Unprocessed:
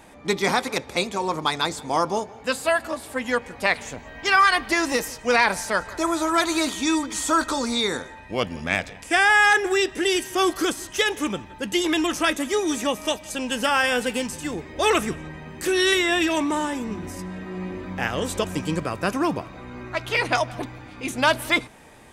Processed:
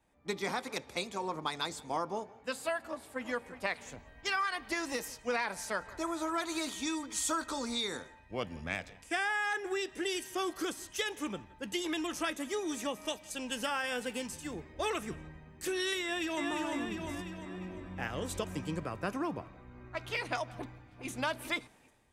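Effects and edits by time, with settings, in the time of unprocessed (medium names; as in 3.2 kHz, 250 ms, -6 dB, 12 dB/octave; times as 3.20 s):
2.81–3.22 s: echo throw 360 ms, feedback 35%, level -11 dB
16.02–16.50 s: echo throw 350 ms, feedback 55%, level -2.5 dB
20.51–21.10 s: echo throw 400 ms, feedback 25%, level -9 dB
whole clip: compression 4:1, threshold -23 dBFS; three bands expanded up and down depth 70%; trim -8.5 dB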